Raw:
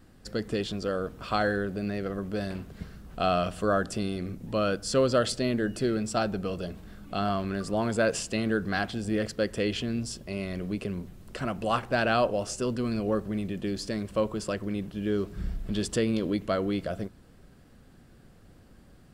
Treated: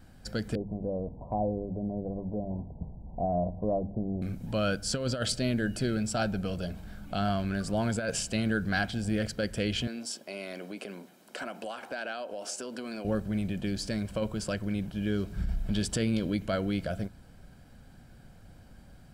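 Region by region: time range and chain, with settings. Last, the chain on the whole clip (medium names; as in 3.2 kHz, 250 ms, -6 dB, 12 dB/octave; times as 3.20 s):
0.55–4.22 s: steep low-pass 980 Hz 96 dB/octave + hum notches 50/100/150/200 Hz
9.87–13.05 s: high-pass 270 Hz 24 dB/octave + compression, threshold -32 dBFS
whole clip: dynamic bell 850 Hz, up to -6 dB, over -41 dBFS, Q 1.2; comb 1.3 ms, depth 46%; compressor with a negative ratio -27 dBFS, ratio -0.5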